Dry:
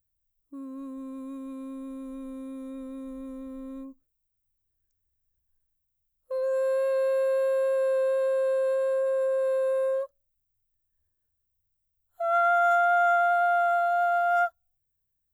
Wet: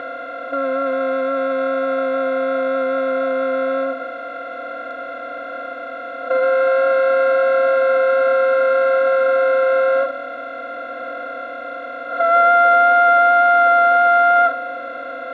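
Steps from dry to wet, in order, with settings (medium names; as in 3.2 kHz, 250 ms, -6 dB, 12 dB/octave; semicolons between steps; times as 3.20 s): spectral levelling over time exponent 0.2; cabinet simulation 150–3700 Hz, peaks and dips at 200 Hz -8 dB, 370 Hz +4 dB, 870 Hz -6 dB, 1.9 kHz +10 dB; trim +8 dB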